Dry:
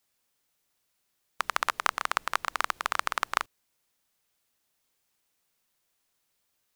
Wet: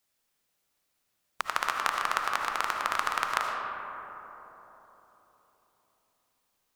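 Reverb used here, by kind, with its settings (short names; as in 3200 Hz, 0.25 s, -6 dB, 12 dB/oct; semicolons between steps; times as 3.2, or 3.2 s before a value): digital reverb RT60 4 s, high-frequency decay 0.3×, pre-delay 35 ms, DRR 1 dB; gain -2 dB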